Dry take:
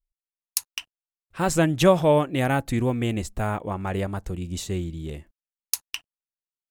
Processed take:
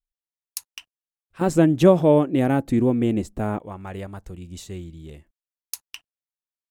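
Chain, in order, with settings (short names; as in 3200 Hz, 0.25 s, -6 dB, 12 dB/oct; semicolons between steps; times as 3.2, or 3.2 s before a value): 1.41–3.59 bell 290 Hz +13.5 dB 2.4 oct; gain -6.5 dB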